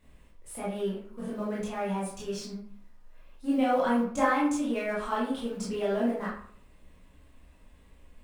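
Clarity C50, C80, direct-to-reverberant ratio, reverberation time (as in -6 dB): 3.0 dB, 7.5 dB, -7.5 dB, 0.55 s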